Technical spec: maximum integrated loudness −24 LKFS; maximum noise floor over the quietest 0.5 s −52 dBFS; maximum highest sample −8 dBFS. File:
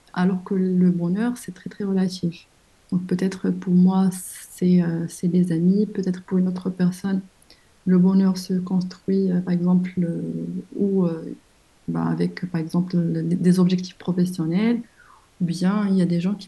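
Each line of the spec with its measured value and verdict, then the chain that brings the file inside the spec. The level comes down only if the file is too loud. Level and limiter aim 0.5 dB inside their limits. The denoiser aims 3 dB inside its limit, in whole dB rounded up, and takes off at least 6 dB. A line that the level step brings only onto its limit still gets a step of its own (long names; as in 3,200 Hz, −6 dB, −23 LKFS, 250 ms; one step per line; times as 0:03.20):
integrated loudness −22.0 LKFS: out of spec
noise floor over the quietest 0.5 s −56 dBFS: in spec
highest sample −7.0 dBFS: out of spec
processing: level −2.5 dB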